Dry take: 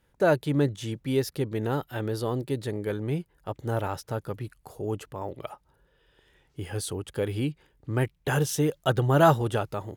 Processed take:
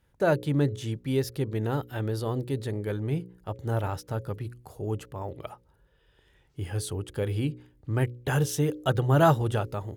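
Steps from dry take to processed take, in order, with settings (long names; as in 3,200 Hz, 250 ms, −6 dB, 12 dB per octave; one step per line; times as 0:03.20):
parametric band 74 Hz +7 dB 1.8 octaves
hum removal 60.58 Hz, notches 9
level −2 dB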